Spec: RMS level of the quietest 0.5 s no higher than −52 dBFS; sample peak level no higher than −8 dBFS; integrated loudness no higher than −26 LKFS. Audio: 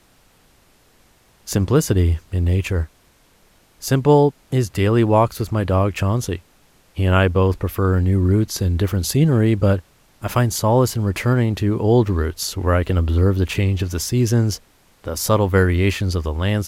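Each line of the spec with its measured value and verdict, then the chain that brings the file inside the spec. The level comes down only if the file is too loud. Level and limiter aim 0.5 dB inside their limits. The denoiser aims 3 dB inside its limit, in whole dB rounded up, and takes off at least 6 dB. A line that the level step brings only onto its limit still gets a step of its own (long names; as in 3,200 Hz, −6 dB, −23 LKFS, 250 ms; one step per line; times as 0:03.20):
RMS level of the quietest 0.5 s −55 dBFS: in spec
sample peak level −3.0 dBFS: out of spec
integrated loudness −19.0 LKFS: out of spec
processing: level −7.5 dB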